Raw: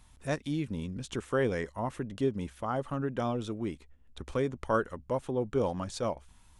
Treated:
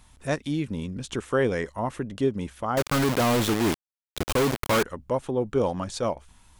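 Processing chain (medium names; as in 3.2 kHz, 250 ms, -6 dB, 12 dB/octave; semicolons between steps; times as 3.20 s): 2.77–4.83 s: companded quantiser 2-bit; bass shelf 140 Hz -3 dB; trim +5.5 dB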